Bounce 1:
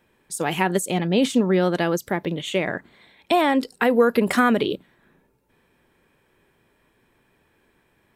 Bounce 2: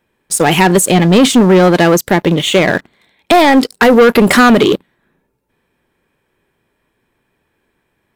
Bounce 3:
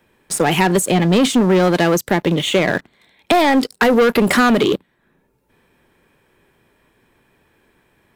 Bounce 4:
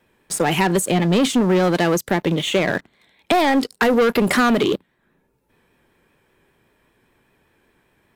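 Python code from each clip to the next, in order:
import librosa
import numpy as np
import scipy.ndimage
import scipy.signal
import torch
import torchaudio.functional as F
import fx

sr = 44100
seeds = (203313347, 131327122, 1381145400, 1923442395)

y1 = fx.leveller(x, sr, passes=3)
y1 = F.gain(torch.from_numpy(y1), 4.5).numpy()
y2 = fx.band_squash(y1, sr, depth_pct=40)
y2 = F.gain(torch.from_numpy(y2), -6.0).numpy()
y3 = fx.vibrato(y2, sr, rate_hz=5.1, depth_cents=39.0)
y3 = F.gain(torch.from_numpy(y3), -3.0).numpy()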